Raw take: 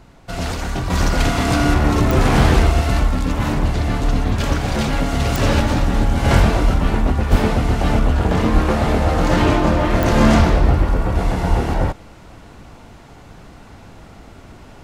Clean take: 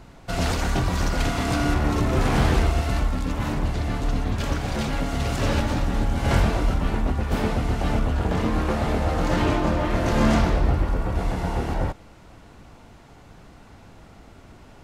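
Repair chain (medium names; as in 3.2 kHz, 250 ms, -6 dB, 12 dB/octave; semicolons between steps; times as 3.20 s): de-click; de-plosive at 7.31/8.04/8.53/10.38/11.49 s; trim 0 dB, from 0.90 s -6.5 dB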